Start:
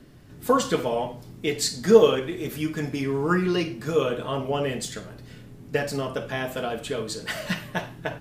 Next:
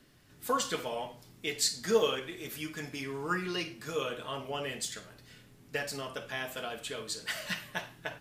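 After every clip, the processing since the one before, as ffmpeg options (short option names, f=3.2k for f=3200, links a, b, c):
-af "tiltshelf=f=890:g=-6,volume=-8.5dB"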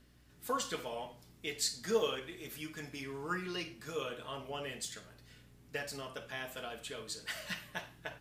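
-af "aeval=exprs='val(0)+0.001*(sin(2*PI*60*n/s)+sin(2*PI*2*60*n/s)/2+sin(2*PI*3*60*n/s)/3+sin(2*PI*4*60*n/s)/4+sin(2*PI*5*60*n/s)/5)':c=same,volume=-5dB"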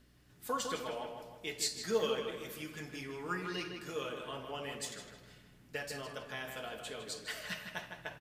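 -filter_complex "[0:a]asplit=2[a][b];[b]adelay=156,lowpass=f=3.3k:p=1,volume=-5.5dB,asplit=2[c][d];[d]adelay=156,lowpass=f=3.3k:p=1,volume=0.49,asplit=2[e][f];[f]adelay=156,lowpass=f=3.3k:p=1,volume=0.49,asplit=2[g][h];[h]adelay=156,lowpass=f=3.3k:p=1,volume=0.49,asplit=2[i][j];[j]adelay=156,lowpass=f=3.3k:p=1,volume=0.49,asplit=2[k][l];[l]adelay=156,lowpass=f=3.3k:p=1,volume=0.49[m];[a][c][e][g][i][k][m]amix=inputs=7:normalize=0,volume=-1dB"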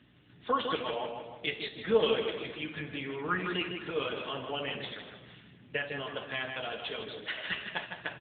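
-af "aemphasis=mode=production:type=75kf,volume=6.5dB" -ar 8000 -c:a libopencore_amrnb -b:a 7950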